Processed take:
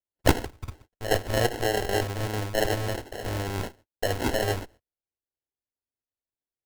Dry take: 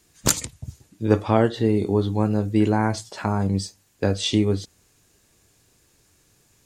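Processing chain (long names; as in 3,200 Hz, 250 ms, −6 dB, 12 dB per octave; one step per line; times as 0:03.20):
lower of the sound and its delayed copy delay 1.8 ms
parametric band 4,500 Hz +10.5 dB 0.25 octaves
noise gate −48 dBFS, range −42 dB
decimation without filtering 37×
parametric band 170 Hz −11.5 dB 0.71 octaves
level +1 dB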